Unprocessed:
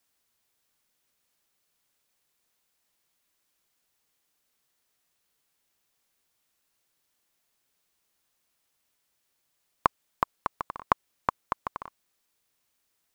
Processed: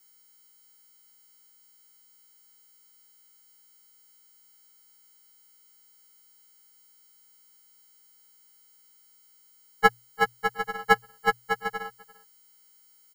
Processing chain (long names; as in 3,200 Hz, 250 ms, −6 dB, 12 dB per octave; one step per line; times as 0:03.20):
every partial snapped to a pitch grid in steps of 6 semitones
ring modulation 430 Hz
mains-hum notches 60/120 Hz
single-tap delay 345 ms −22 dB
level +3 dB